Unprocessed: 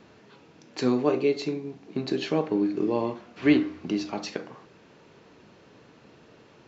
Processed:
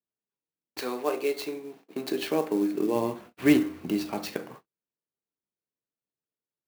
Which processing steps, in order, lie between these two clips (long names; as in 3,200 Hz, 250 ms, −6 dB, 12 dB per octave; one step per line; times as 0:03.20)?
noise gate −45 dBFS, range −47 dB
0:00.79–0:02.94: high-pass filter 610 Hz → 190 Hz 12 dB per octave
converter with an unsteady clock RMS 0.024 ms